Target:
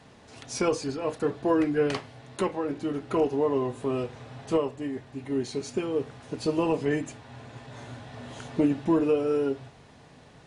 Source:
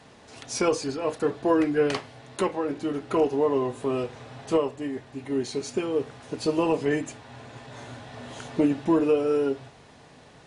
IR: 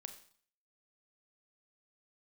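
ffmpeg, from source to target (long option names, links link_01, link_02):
-af "bass=frequency=250:gain=4,treble=frequency=4000:gain=-1,volume=-2.5dB"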